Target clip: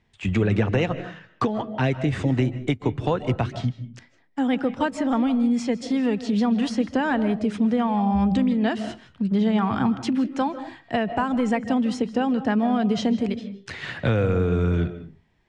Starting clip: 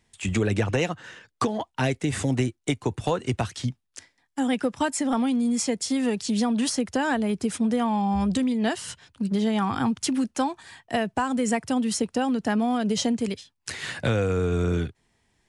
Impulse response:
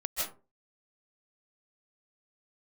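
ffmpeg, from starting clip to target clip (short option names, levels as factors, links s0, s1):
-filter_complex "[0:a]lowpass=3400,asplit=2[s0][s1];[s1]equalizer=f=170:w=1.5:g=4.5[s2];[1:a]atrim=start_sample=2205,lowshelf=f=430:g=9,highshelf=f=5200:g=-9.5[s3];[s2][s3]afir=irnorm=-1:irlink=0,volume=0.15[s4];[s0][s4]amix=inputs=2:normalize=0"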